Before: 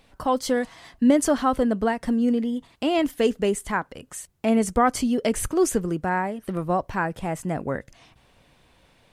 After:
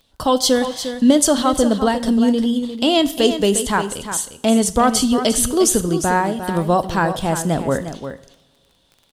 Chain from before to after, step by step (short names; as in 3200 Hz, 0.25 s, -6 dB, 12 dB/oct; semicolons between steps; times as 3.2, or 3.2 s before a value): gate -49 dBFS, range -14 dB; resonant high shelf 2800 Hz +6 dB, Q 3; in parallel at +2.5 dB: vocal rider within 3 dB 0.5 s; on the sum: crackle 16/s -33 dBFS; on a send: echo 0.353 s -10 dB; on the sum: two-slope reverb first 0.59 s, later 2.1 s, from -18 dB, DRR 12.5 dB; gain -1.5 dB